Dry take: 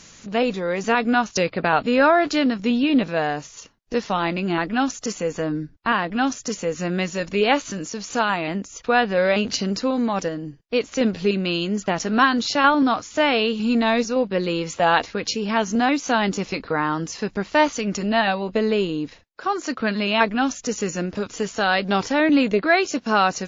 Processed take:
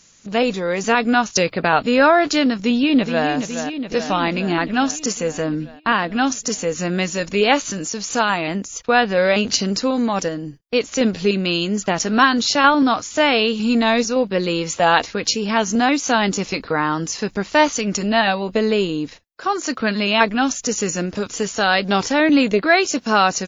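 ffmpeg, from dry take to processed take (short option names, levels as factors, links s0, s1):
-filter_complex "[0:a]asplit=2[s0][s1];[s1]afade=t=in:st=2.62:d=0.01,afade=t=out:st=3.27:d=0.01,aecho=0:1:420|840|1260|1680|2100|2520|2940|3360|3780|4200|4620:0.398107|0.278675|0.195073|0.136551|0.0955855|0.0669099|0.0468369|0.0327858|0.0229501|0.0160651|0.0112455[s2];[s0][s2]amix=inputs=2:normalize=0,agate=range=0.251:threshold=0.01:ratio=16:detection=peak,highshelf=f=6600:g=11.5,volume=1.33"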